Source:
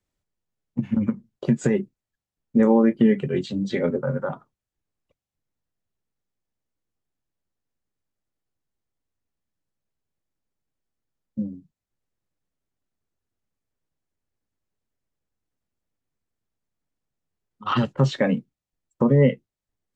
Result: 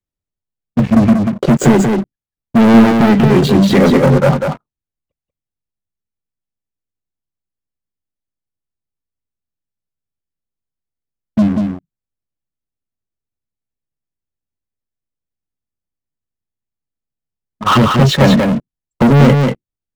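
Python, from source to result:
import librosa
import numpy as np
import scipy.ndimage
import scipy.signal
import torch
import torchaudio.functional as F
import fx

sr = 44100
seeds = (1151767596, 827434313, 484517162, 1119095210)

p1 = fx.low_shelf(x, sr, hz=260.0, db=6.0)
p2 = fx.leveller(p1, sr, passes=5)
p3 = p2 + fx.echo_single(p2, sr, ms=188, db=-4.5, dry=0)
y = p3 * librosa.db_to_amplitude(-1.5)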